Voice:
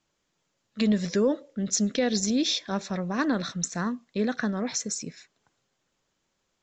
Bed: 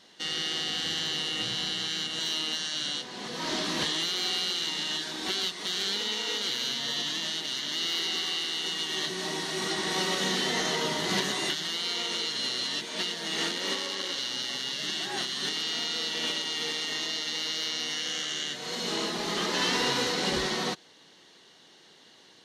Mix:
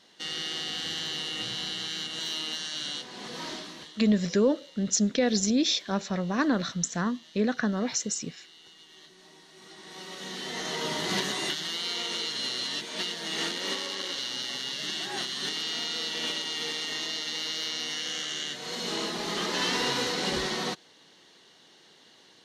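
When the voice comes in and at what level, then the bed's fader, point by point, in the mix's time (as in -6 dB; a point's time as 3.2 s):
3.20 s, +0.5 dB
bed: 3.39 s -2.5 dB
3.99 s -21.5 dB
9.53 s -21.5 dB
10.94 s -1 dB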